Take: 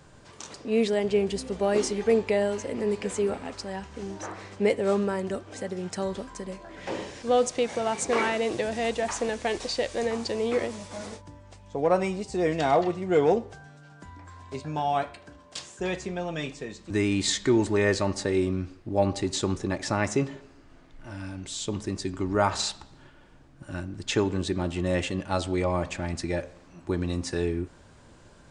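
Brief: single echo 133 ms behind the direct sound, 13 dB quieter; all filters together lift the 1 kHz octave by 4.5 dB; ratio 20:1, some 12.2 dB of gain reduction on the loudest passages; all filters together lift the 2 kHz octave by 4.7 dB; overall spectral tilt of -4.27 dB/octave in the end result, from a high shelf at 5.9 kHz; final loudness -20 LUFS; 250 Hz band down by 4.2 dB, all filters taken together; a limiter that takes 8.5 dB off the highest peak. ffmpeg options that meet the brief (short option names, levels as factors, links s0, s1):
-af "equalizer=f=250:t=o:g=-6.5,equalizer=f=1000:t=o:g=6,equalizer=f=2000:t=o:g=4.5,highshelf=f=5900:g=-4.5,acompressor=threshold=0.0501:ratio=20,alimiter=limit=0.075:level=0:latency=1,aecho=1:1:133:0.224,volume=5.01"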